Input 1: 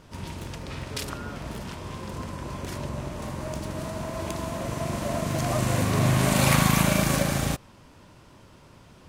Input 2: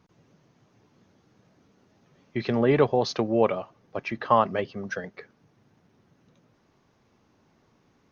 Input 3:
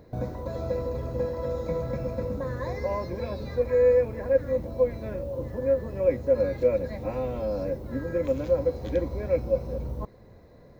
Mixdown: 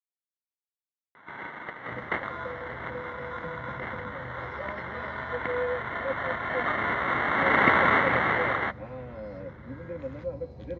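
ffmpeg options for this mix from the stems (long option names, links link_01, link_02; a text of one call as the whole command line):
ffmpeg -i stem1.wav -i stem2.wav -i stem3.wav -filter_complex "[0:a]highpass=frequency=880:width=0.5412,highpass=frequency=880:width=1.3066,acrusher=samples=18:mix=1:aa=0.000001,lowpass=frequency=2100:width_type=q:width=11,adelay=1150,volume=2dB[link_01];[2:a]asubboost=boost=3:cutoff=170,adelay=1750,volume=-9dB[link_02];[link_01][link_02]amix=inputs=2:normalize=0,highpass=130,lowpass=3900" out.wav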